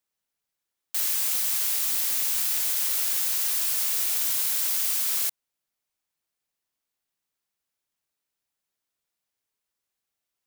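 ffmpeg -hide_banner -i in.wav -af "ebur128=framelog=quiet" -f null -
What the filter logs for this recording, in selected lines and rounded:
Integrated loudness:
  I:         -22.5 LUFS
  Threshold: -32.5 LUFS
Loudness range:
  LRA:         7.8 LU
  Threshold: -43.7 LUFS
  LRA low:   -30.0 LUFS
  LRA high:  -22.1 LUFS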